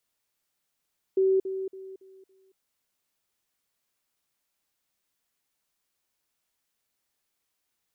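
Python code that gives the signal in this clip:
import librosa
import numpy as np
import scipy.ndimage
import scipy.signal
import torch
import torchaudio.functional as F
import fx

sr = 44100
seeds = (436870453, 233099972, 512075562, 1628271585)

y = fx.level_ladder(sr, hz=382.0, from_db=-19.0, step_db=-10.0, steps=5, dwell_s=0.23, gap_s=0.05)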